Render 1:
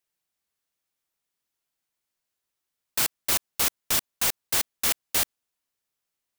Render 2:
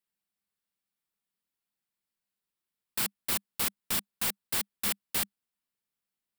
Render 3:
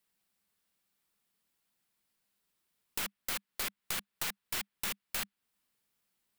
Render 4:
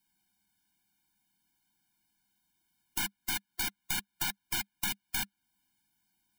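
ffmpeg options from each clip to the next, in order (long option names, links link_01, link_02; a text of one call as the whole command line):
ffmpeg -i in.wav -af "equalizer=frequency=200:width_type=o:width=0.33:gain=11,equalizer=frequency=630:width_type=o:width=0.33:gain=-4,equalizer=frequency=6300:width_type=o:width=0.33:gain=-7,volume=-5.5dB" out.wav
ffmpeg -i in.wav -filter_complex "[0:a]acrossover=split=1200|3500[link_01][link_02][link_03];[link_01]acompressor=threshold=-52dB:ratio=4[link_04];[link_02]acompressor=threshold=-39dB:ratio=4[link_05];[link_03]acompressor=threshold=-44dB:ratio=4[link_06];[link_04][link_05][link_06]amix=inputs=3:normalize=0,aeval=exprs='0.0891*(cos(1*acos(clip(val(0)/0.0891,-1,1)))-cos(1*PI/2))+0.0126*(cos(4*acos(clip(val(0)/0.0891,-1,1)))-cos(4*PI/2))+0.0316*(cos(7*acos(clip(val(0)/0.0891,-1,1)))-cos(7*PI/2))':channel_layout=same,volume=5dB" out.wav
ffmpeg -i in.wav -af "afftfilt=real='re*eq(mod(floor(b*sr/1024/350),2),0)':imag='im*eq(mod(floor(b*sr/1024/350),2),0)':win_size=1024:overlap=0.75,volume=6dB" out.wav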